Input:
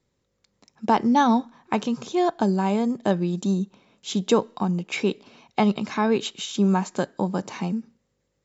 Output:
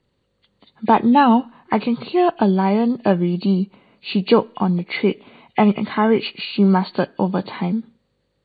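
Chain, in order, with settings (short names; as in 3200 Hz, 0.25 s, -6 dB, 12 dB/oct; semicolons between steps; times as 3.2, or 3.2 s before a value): nonlinear frequency compression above 1700 Hz 1.5:1; gain +5.5 dB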